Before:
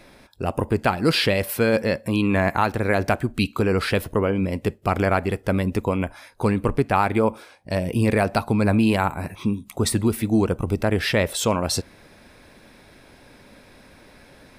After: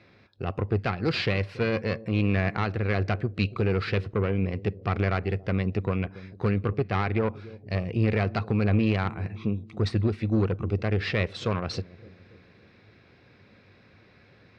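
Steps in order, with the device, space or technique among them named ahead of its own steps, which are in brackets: analogue delay pedal into a guitar amplifier (analogue delay 0.281 s, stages 1024, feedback 56%, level -18 dB; tube stage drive 15 dB, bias 0.75; speaker cabinet 87–4300 Hz, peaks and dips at 100 Hz +9 dB, 270 Hz -7 dB, 600 Hz -7 dB, 900 Hz -9 dB, 1600 Hz -3 dB, 3300 Hz -6 dB)

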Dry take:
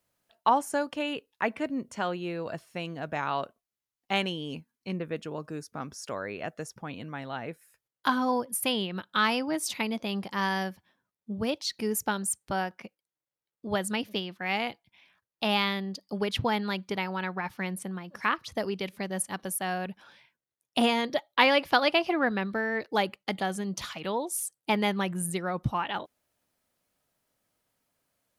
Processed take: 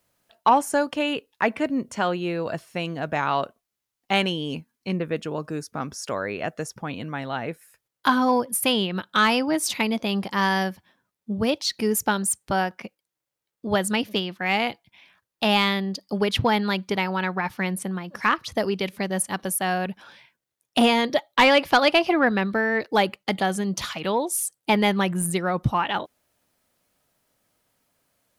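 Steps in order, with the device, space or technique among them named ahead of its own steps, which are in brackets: saturation between pre-emphasis and de-emphasis (high shelf 3900 Hz +10 dB; soft clip -13 dBFS, distortion -19 dB; high shelf 3900 Hz -10 dB); gain +7 dB

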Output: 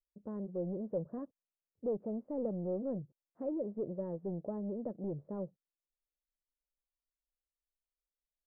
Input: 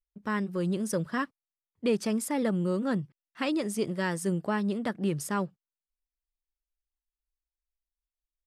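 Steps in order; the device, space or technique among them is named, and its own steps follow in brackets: overdriven synthesiser ladder filter (soft clip -26.5 dBFS, distortion -13 dB; ladder low-pass 640 Hz, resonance 55%); gain +1.5 dB

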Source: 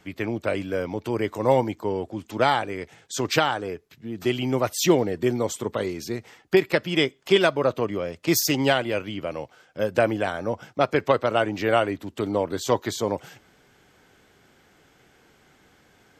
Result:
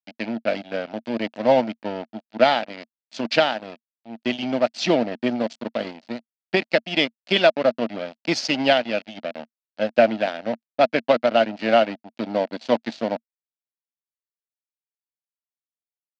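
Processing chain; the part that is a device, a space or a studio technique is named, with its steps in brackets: blown loudspeaker (crossover distortion -30 dBFS; speaker cabinet 220–5100 Hz, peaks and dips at 230 Hz +10 dB, 400 Hz -9 dB, 640 Hz +9 dB, 1100 Hz -8 dB, 2700 Hz +4 dB, 4500 Hz +6 dB); gain +2.5 dB

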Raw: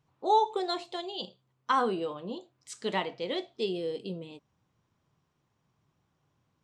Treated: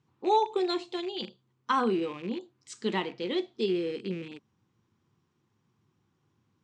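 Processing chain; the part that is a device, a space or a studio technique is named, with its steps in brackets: car door speaker with a rattle (rattling part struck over -51 dBFS, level -37 dBFS; speaker cabinet 81–8300 Hz, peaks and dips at 100 Hz +6 dB, 220 Hz +7 dB, 350 Hz +7 dB, 630 Hz -10 dB)

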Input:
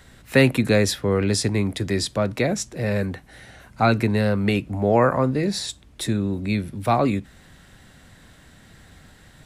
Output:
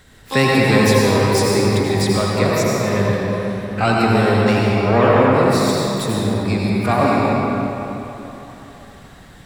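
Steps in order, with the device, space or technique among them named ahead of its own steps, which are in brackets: shimmer-style reverb (harmoniser +12 st -9 dB; reverb RT60 3.6 s, pre-delay 76 ms, DRR -4.5 dB)

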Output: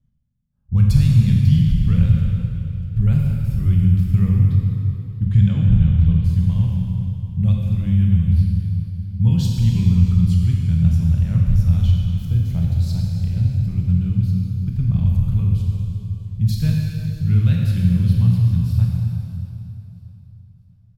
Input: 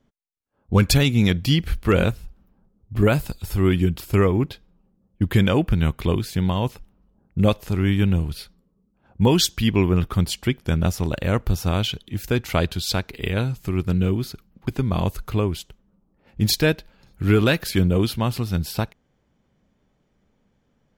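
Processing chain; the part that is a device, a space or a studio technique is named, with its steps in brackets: 5.24–6.23 LPF 10000 Hz -> 4500 Hz 24 dB/oct; 12.29–13.52 spectral gain 970–3800 Hz -7 dB; EQ curve 160 Hz 0 dB, 330 Hz -29 dB, 3800 Hz -20 dB; stairwell (reverb RT60 2.8 s, pre-delay 18 ms, DRR -1.5 dB); feedback echo 0.64 s, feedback 36%, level -22 dB; gain +4 dB

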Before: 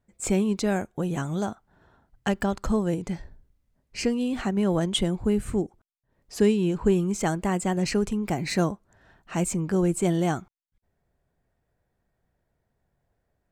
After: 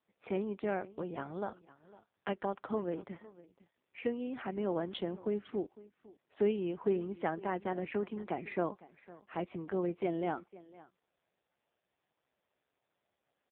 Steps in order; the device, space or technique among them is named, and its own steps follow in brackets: satellite phone (BPF 330–3300 Hz; echo 0.506 s -19.5 dB; gain -5.5 dB; AMR-NB 5.15 kbps 8000 Hz)

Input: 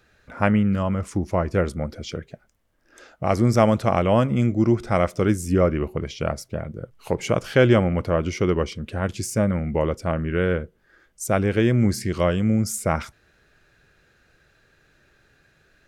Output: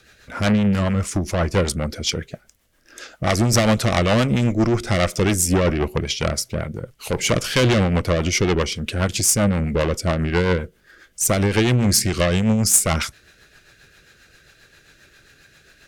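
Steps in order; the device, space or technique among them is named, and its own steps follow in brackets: overdriven rotary cabinet (tube stage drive 20 dB, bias 0.4; rotary speaker horn 7.5 Hz); high shelf 2000 Hz +11.5 dB; gain +8 dB

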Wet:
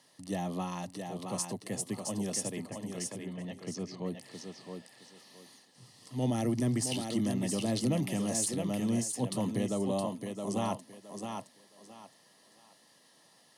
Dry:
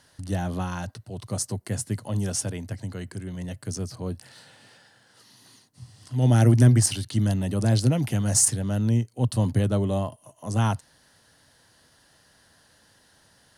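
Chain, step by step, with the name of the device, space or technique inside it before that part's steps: PA system with an anti-feedback notch (HPF 160 Hz 24 dB/oct; Butterworth band-stop 1500 Hz, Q 4.1; limiter -18.5 dBFS, peak gain reduction 10.5 dB); 2.59–4.05 LPF 2600 Hz -> 6700 Hz 24 dB/oct; thinning echo 0.667 s, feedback 26%, high-pass 190 Hz, level -4.5 dB; gain -4 dB

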